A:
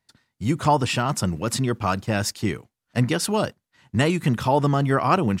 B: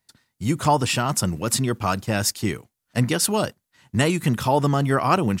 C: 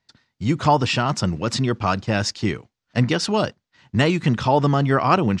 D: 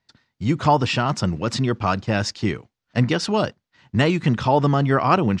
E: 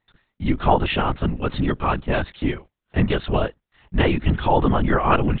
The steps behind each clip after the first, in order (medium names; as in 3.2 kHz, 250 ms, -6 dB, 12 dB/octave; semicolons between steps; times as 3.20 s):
treble shelf 7.2 kHz +10.5 dB
low-pass 5.7 kHz 24 dB/octave; trim +2 dB
treble shelf 4.9 kHz -4.5 dB
LPC vocoder at 8 kHz whisper